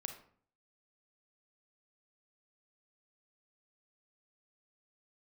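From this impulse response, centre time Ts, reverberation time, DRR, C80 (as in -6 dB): 16 ms, 0.55 s, 5.5 dB, 12.5 dB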